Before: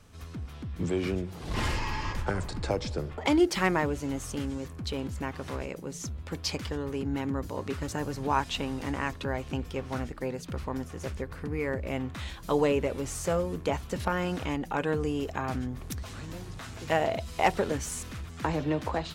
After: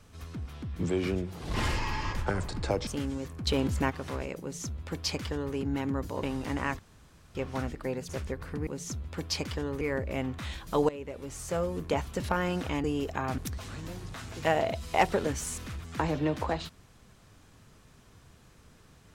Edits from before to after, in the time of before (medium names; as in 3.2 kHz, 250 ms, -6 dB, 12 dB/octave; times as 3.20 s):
2.87–4.27 s: delete
4.87–5.30 s: gain +6 dB
5.81–6.95 s: copy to 11.57 s
7.63–8.60 s: delete
9.16–9.72 s: room tone
10.46–10.99 s: delete
12.65–13.64 s: fade in, from -18.5 dB
14.60–15.04 s: delete
15.58–15.83 s: delete